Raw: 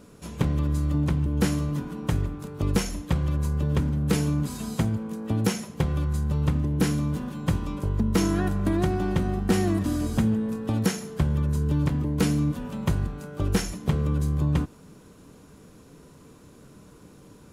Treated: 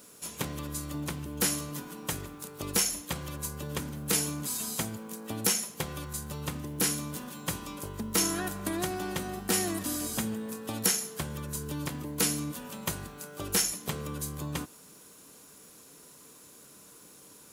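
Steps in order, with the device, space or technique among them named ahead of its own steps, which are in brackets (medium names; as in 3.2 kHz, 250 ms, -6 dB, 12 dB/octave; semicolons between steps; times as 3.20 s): turntable without a phono preamp (RIAA curve recording; white noise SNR 36 dB); trim -3 dB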